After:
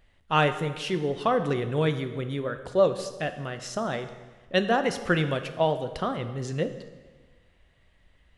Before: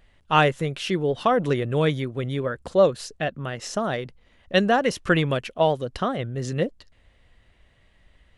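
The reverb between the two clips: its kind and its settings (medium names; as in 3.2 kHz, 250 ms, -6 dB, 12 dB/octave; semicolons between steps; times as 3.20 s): plate-style reverb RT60 1.4 s, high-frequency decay 0.85×, DRR 8.5 dB; trim -4 dB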